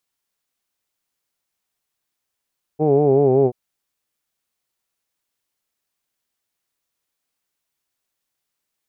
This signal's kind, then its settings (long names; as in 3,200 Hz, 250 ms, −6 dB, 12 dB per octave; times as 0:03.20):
vowel from formants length 0.73 s, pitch 149 Hz, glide −2.5 semitones, F1 410 Hz, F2 760 Hz, F3 2,400 Hz